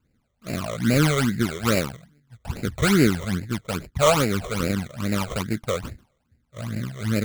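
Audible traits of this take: aliases and images of a low sample rate 1.8 kHz, jitter 20%; phasing stages 12, 2.4 Hz, lowest notch 260–1100 Hz

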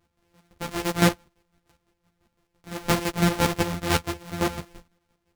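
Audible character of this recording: a buzz of ramps at a fixed pitch in blocks of 256 samples; chopped level 5.9 Hz, depth 65%, duty 35%; a shimmering, thickened sound

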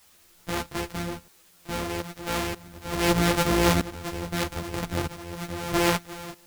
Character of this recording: a buzz of ramps at a fixed pitch in blocks of 256 samples; tremolo saw up 0.79 Hz, depth 90%; a quantiser's noise floor 10-bit, dither triangular; a shimmering, thickened sound

